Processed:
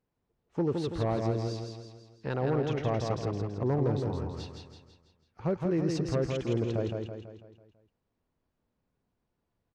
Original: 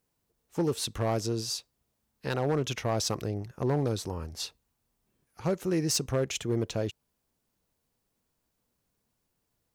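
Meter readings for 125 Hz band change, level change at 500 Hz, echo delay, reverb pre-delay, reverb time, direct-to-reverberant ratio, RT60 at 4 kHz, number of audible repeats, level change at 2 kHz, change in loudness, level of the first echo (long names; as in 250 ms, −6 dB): +1.5 dB, +0.5 dB, 165 ms, no reverb audible, no reverb audible, no reverb audible, no reverb audible, 6, −3.5 dB, −0.5 dB, −4.0 dB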